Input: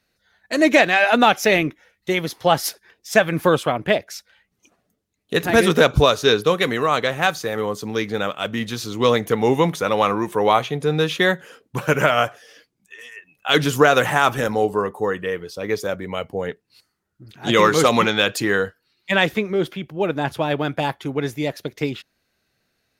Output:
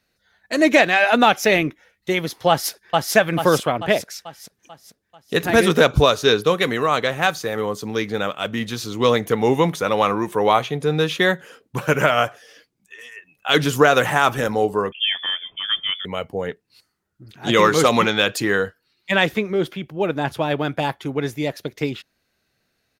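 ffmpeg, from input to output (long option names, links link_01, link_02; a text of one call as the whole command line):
ffmpeg -i in.wav -filter_complex "[0:a]asplit=2[link_01][link_02];[link_02]afade=type=in:start_time=2.49:duration=0.01,afade=type=out:start_time=3.15:duration=0.01,aecho=0:1:440|880|1320|1760|2200|2640|3080:0.841395|0.420698|0.210349|0.105174|0.0525872|0.0262936|0.0131468[link_03];[link_01][link_03]amix=inputs=2:normalize=0,asettb=1/sr,asplit=3[link_04][link_05][link_06];[link_04]atrim=end=14.924[link_07];[link_05]atrim=start=14.92:end=16.05,asetpts=PTS-STARTPTS,afade=type=in:duration=0.004:curve=qsin,afade=type=out:start_time=1.126:duration=0.004:curve=qsin,lowpass=frequency=3100:width_type=q:width=0.5098,lowpass=frequency=3100:width_type=q:width=0.6013,lowpass=frequency=3100:width_type=q:width=0.9,lowpass=frequency=3100:width_type=q:width=2.563,afreqshift=-3600[link_08];[link_06]atrim=start=16.046[link_09];[link_07][link_08]acrossfade=duration=0.004:curve1=hsin:curve2=qsin[link_10];[link_10][link_09]acrossfade=duration=0.004:curve1=qsin:curve2=hsin" out.wav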